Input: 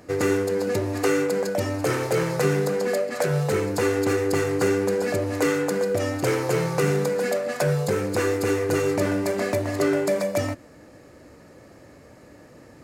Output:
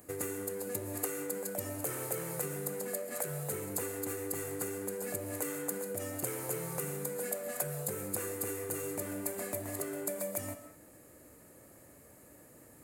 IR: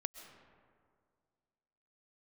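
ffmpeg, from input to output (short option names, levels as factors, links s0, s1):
-filter_complex "[0:a]acompressor=threshold=0.0501:ratio=6,aexciter=amount=6.2:drive=8.4:freq=7700[s0];[1:a]atrim=start_sample=2205,afade=t=out:st=0.27:d=0.01,atrim=end_sample=12348[s1];[s0][s1]afir=irnorm=-1:irlink=0,volume=0.376"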